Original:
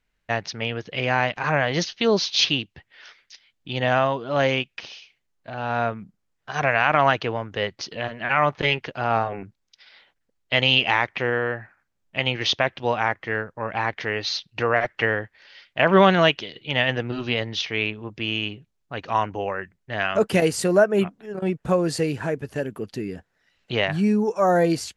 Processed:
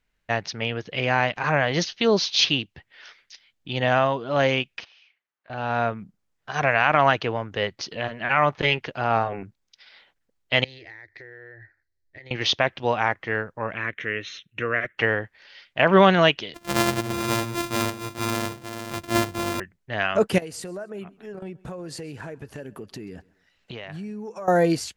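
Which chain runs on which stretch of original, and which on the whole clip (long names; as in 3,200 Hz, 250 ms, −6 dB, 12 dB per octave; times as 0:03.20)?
0:04.84–0:05.50: resonant band-pass 1,500 Hz, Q 1 + downward compressor 12 to 1, threshold −51 dBFS
0:10.64–0:12.31: drawn EQ curve 100 Hz 0 dB, 210 Hz −27 dB, 320 Hz −2 dB, 1,200 Hz −23 dB, 1,900 Hz +2 dB, 2,900 Hz −29 dB, 4,100 Hz −1 dB, 9,400 Hz −16 dB + downward compressor 8 to 1, threshold −40 dBFS
0:13.74–0:14.98: low-shelf EQ 90 Hz −10.5 dB + phaser with its sweep stopped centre 2,000 Hz, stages 4
0:16.54–0:19.60: samples sorted by size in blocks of 128 samples + single-tap delay 442 ms −8.5 dB
0:20.38–0:24.48: downward compressor, threshold −33 dBFS + repeating echo 132 ms, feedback 35%, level −23.5 dB
whole clip: no processing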